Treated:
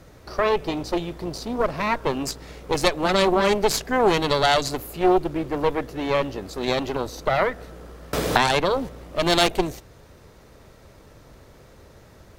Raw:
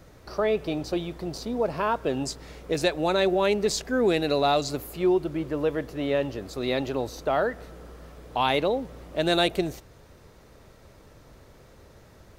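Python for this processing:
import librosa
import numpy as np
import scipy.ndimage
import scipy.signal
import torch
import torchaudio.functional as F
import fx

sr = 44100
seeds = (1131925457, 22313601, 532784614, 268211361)

y = fx.cheby_harmonics(x, sr, harmonics=(4,), levels_db=(-8,), full_scale_db=-9.5)
y = fx.band_squash(y, sr, depth_pct=100, at=(8.13, 8.89))
y = y * librosa.db_to_amplitude(3.0)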